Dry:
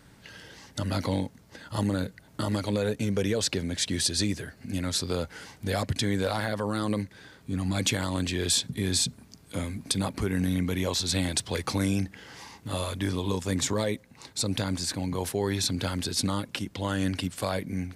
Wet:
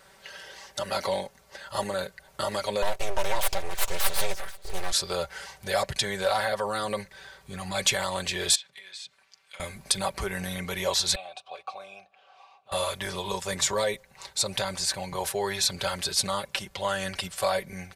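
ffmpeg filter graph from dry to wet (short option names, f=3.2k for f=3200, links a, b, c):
-filter_complex "[0:a]asettb=1/sr,asplit=3[a][b][c];[a]atrim=end=2.824[d];[b]atrim=start=2.82:end=4.92,asetpts=PTS-STARTPTS,afade=t=in:d=0.004:c=qsin,afade=t=out:st=2.096:d=0.004:c=qsin,agate=range=-33dB:threshold=-41dB:ratio=3:release=100:detection=peak,aecho=1:1:482:0.0794,atrim=end_sample=92610,aeval=exprs='abs(val(0))':c=same[e];[c]atrim=start=4.916[f];[d][e]acrossfade=d=0.004:c1=hsin:c2=qsin[g];[g][f]acrossfade=d=0.004:c1=qsin:c2=hsin,asettb=1/sr,asplit=3[h][i][j];[h]atrim=end=8.554[k];[i]atrim=start=8.55:end=9.6,asetpts=PTS-STARTPTS,afade=t=in:d=0.004:c=qsin,afade=t=out:st=1.046:d=0.004:c=qsin,acompressor=threshold=-33dB:ratio=10:attack=3.2:release=140:knee=1:detection=peak,bandpass=f=2.4k:t=q:w=1.2[l];[j]atrim=start=9.596[m];[k][l]acrossfade=d=0.004:c1=hsin:c2=qsin[n];[n][m]acrossfade=d=0.004:c1=qsin:c2=hsin,asettb=1/sr,asplit=3[o][p][q];[o]atrim=end=11.154[r];[p]atrim=start=11.15:end=12.72,asetpts=PTS-STARTPTS,afade=t=in:d=0.004:c=qsin,afade=t=out:st=1.566:d=0.004:c=qsin,asplit=3[s][t][u];[s]bandpass=f=730:t=q:w=8,volume=0dB[v];[t]bandpass=f=1.09k:t=q:w=8,volume=-6dB[w];[u]bandpass=f=2.44k:t=q:w=8,volume=-9dB[x];[v][w][x]amix=inputs=3:normalize=0,equalizer=f=3.8k:t=o:w=0.23:g=6.5[y];[q]atrim=start=12.716[z];[r][y]acrossfade=d=0.004:c1=hsin:c2=qsin[aa];[aa][z]acrossfade=d=0.004:c1=qsin:c2=hsin,lowshelf=f=370:t=q:w=1.5:g=-12.5,aecho=1:1:5.2:0.69,asubboost=boost=5.5:cutoff=110,volume=2dB"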